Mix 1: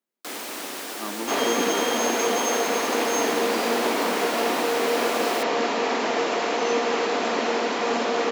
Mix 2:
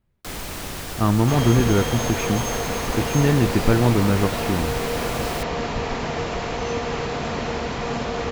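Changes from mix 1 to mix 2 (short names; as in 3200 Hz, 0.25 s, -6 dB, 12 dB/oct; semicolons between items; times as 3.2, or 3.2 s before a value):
speech +11.0 dB; second sound -3.5 dB; master: remove steep high-pass 240 Hz 36 dB/oct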